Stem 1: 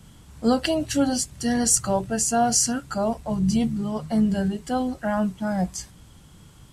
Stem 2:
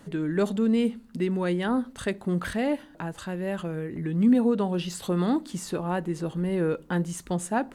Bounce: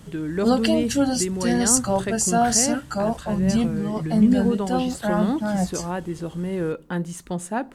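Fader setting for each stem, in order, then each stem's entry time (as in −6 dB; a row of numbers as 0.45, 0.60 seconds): +1.0, 0.0 decibels; 0.00, 0.00 seconds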